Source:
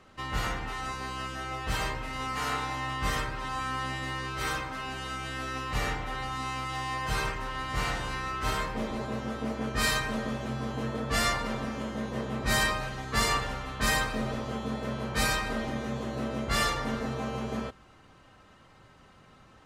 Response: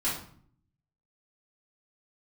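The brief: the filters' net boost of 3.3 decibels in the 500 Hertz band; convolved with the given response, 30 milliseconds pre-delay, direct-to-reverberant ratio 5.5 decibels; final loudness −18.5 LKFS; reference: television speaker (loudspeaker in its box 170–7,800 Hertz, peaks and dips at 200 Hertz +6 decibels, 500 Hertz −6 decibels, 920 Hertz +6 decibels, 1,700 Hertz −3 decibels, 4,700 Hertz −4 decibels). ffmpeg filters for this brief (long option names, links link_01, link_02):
-filter_complex "[0:a]equalizer=frequency=500:width_type=o:gain=7,asplit=2[link_01][link_02];[1:a]atrim=start_sample=2205,adelay=30[link_03];[link_02][link_03]afir=irnorm=-1:irlink=0,volume=-13.5dB[link_04];[link_01][link_04]amix=inputs=2:normalize=0,highpass=frequency=170:width=0.5412,highpass=frequency=170:width=1.3066,equalizer=frequency=200:width_type=q:width=4:gain=6,equalizer=frequency=500:width_type=q:width=4:gain=-6,equalizer=frequency=920:width_type=q:width=4:gain=6,equalizer=frequency=1700:width_type=q:width=4:gain=-3,equalizer=frequency=4700:width_type=q:width=4:gain=-4,lowpass=frequency=7800:width=0.5412,lowpass=frequency=7800:width=1.3066,volume=11dB"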